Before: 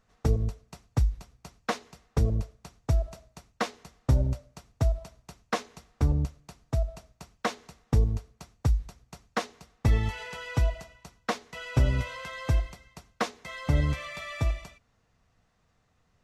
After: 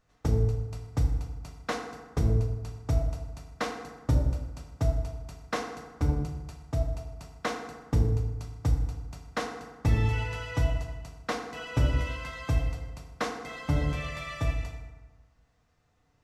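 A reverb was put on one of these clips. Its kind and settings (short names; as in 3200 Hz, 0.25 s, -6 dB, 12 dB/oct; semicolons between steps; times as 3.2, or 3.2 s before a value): FDN reverb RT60 1.3 s, low-frequency decay 1.05×, high-frequency decay 0.55×, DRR 1.5 dB; gain -3 dB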